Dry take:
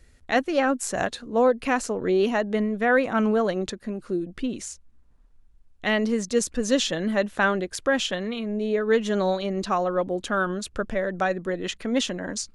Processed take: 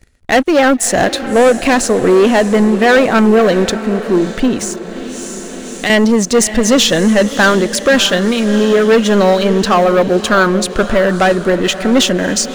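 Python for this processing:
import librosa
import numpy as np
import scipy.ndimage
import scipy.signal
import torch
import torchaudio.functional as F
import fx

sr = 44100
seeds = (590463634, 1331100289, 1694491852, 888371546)

p1 = fx.leveller(x, sr, passes=3)
p2 = p1 + fx.echo_diffused(p1, sr, ms=625, feedback_pct=52, wet_db=-12.5, dry=0)
p3 = fx.band_squash(p2, sr, depth_pct=70, at=(4.62, 5.9))
y = p3 * librosa.db_to_amplitude(5.0)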